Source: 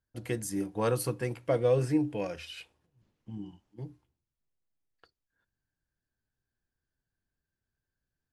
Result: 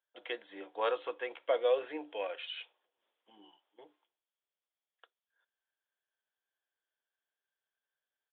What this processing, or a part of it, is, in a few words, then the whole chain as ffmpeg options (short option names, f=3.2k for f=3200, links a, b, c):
musical greeting card: -af "aresample=8000,aresample=44100,highpass=f=500:w=0.5412,highpass=f=500:w=1.3066,equalizer=f=3.3k:t=o:w=0.2:g=9"